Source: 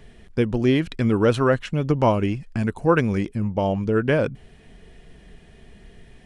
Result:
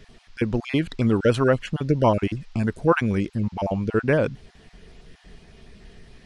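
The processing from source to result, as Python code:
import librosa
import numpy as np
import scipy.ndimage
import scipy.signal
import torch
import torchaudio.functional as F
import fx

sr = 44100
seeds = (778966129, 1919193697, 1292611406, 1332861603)

y = fx.spec_dropout(x, sr, seeds[0], share_pct=22)
y = fx.dmg_noise_band(y, sr, seeds[1], low_hz=750.0, high_hz=5400.0, level_db=-62.0)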